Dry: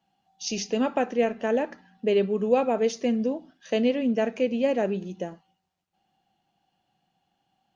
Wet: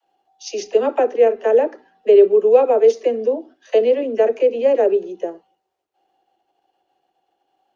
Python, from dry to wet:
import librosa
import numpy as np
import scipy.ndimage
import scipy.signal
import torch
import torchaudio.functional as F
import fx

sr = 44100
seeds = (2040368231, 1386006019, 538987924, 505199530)

p1 = fx.tilt_shelf(x, sr, db=4.0, hz=1300.0)
p2 = fx.level_steps(p1, sr, step_db=12)
p3 = p1 + (p2 * librosa.db_to_amplitude(-2.0))
p4 = fx.low_shelf_res(p3, sr, hz=270.0, db=-13.5, q=3.0)
p5 = fx.hum_notches(p4, sr, base_hz=50, count=5)
p6 = fx.dispersion(p5, sr, late='lows', ms=41.0, hz=440.0)
y = p6 * librosa.db_to_amplitude(-1.0)